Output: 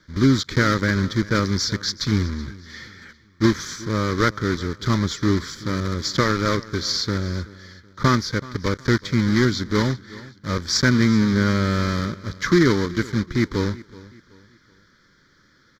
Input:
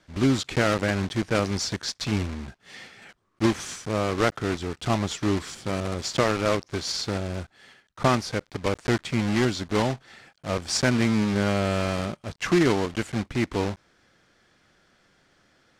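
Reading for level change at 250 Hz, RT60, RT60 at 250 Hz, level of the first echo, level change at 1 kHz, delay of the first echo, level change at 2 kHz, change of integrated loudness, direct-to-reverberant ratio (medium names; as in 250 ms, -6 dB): +5.0 dB, no reverb, no reverb, -20.0 dB, +2.5 dB, 377 ms, +5.0 dB, +4.0 dB, no reverb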